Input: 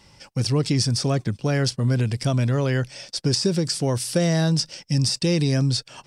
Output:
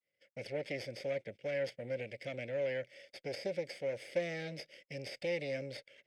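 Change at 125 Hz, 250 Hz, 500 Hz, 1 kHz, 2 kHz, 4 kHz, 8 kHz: -28.5 dB, -24.0 dB, -9.5 dB, -18.0 dB, -9.5 dB, -22.5 dB, -30.0 dB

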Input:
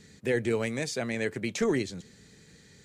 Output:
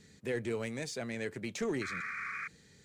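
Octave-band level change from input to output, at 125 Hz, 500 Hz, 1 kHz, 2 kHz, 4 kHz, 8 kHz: -7.0 dB, -7.5 dB, -1.5 dB, -3.0 dB, -6.5 dB, -6.5 dB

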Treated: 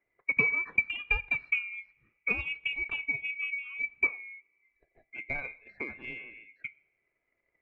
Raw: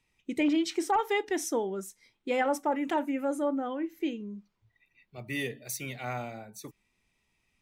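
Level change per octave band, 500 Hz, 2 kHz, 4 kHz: -16.0 dB, +9.5 dB, -3.0 dB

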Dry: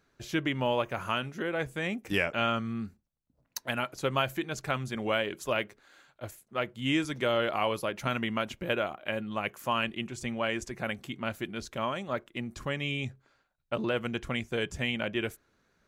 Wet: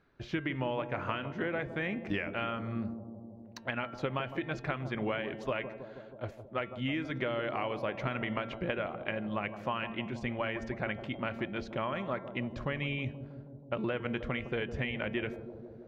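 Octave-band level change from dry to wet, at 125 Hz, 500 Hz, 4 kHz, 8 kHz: -1.0 dB, -3.5 dB, -8.0 dB, under -15 dB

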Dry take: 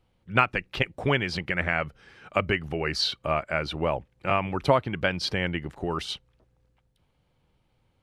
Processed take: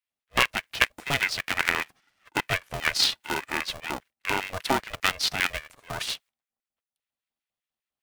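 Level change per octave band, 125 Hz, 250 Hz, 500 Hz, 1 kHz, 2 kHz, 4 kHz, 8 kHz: -9.0 dB, -6.0 dB, -8.0 dB, -2.0 dB, +2.5 dB, +4.5 dB, +11.0 dB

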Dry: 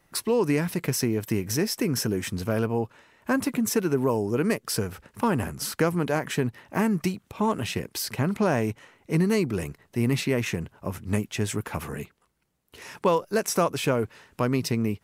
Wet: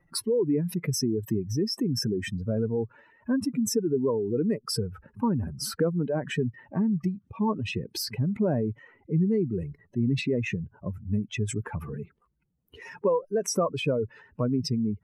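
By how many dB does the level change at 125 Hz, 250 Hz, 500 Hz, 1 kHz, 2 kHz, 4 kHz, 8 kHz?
-1.0 dB, -1.0 dB, -1.5 dB, -7.5 dB, -7.0 dB, -1.0 dB, -3.5 dB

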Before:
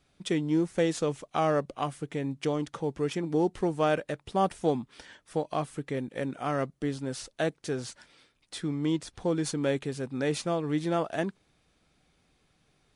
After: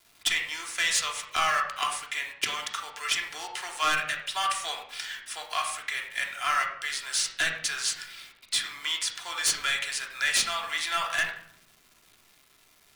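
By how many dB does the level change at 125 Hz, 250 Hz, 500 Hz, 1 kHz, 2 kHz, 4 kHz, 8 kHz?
-21.5 dB, -24.0 dB, -15.0 dB, +3.0 dB, +12.5 dB, +14.0 dB, +14.0 dB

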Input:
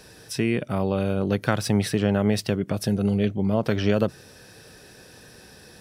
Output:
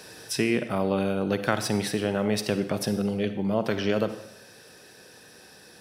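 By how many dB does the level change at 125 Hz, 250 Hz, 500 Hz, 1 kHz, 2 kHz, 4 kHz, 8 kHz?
-7.0 dB, -3.5 dB, -1.0 dB, 0.0 dB, 0.0 dB, +0.5 dB, +0.5 dB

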